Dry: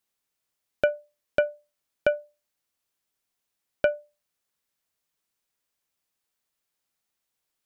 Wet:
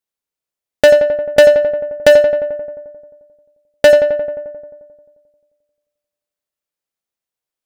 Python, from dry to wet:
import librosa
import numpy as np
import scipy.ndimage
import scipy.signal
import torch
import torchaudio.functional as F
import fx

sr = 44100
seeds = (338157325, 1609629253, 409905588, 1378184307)

p1 = fx.peak_eq(x, sr, hz=510.0, db=4.5, octaves=0.66)
p2 = fx.leveller(p1, sr, passes=5)
p3 = p2 + fx.echo_filtered(p2, sr, ms=88, feedback_pct=72, hz=2300.0, wet_db=-7, dry=0)
y = p3 * 10.0 ** (4.0 / 20.0)